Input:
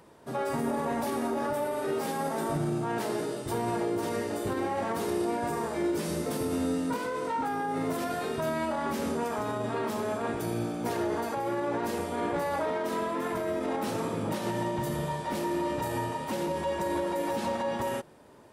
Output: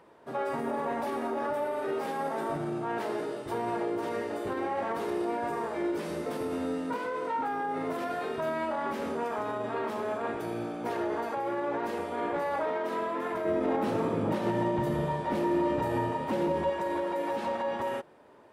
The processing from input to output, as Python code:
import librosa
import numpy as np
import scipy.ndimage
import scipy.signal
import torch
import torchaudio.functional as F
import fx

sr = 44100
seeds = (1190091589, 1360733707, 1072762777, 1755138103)

y = fx.low_shelf(x, sr, hz=380.0, db=10.5, at=(13.45, 16.7))
y = fx.bass_treble(y, sr, bass_db=-9, treble_db=-12)